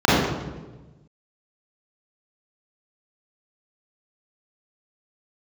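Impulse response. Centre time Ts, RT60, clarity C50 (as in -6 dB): 99 ms, 1.2 s, -3.5 dB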